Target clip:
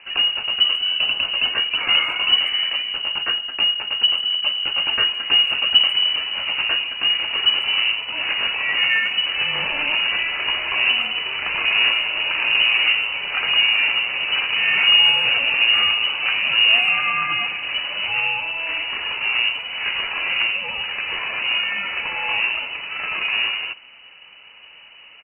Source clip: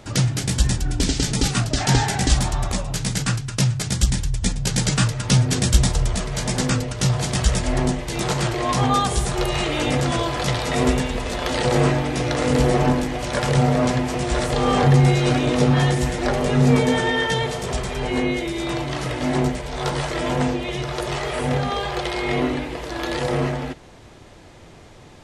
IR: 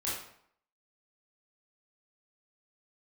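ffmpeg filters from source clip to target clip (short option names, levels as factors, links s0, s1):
-filter_complex "[0:a]acrusher=bits=4:mode=log:mix=0:aa=0.000001,lowpass=f=2600:t=q:w=0.5098,lowpass=f=2600:t=q:w=0.6013,lowpass=f=2600:t=q:w=0.9,lowpass=f=2600:t=q:w=2.563,afreqshift=-3000,asplit=2[s0][s1];[s1]adelay=140,highpass=300,lowpass=3400,asoftclip=type=hard:threshold=0.224,volume=0.0501[s2];[s0][s2]amix=inputs=2:normalize=0"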